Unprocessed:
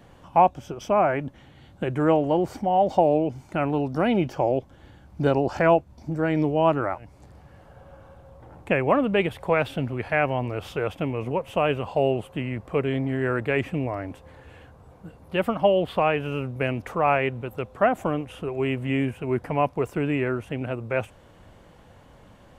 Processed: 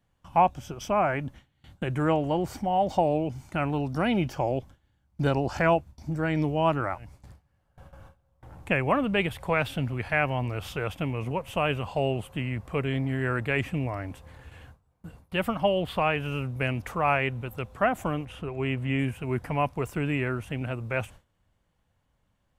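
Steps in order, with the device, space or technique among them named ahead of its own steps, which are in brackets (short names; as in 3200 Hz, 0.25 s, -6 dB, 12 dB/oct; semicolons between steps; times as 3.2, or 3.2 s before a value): 18.25–18.99 high shelf 6400 Hz -11.5 dB; gate with hold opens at -38 dBFS; smiley-face EQ (low shelf 85 Hz +5 dB; bell 440 Hz -6.5 dB 1.9 oct; high shelf 6400 Hz +5.5 dB)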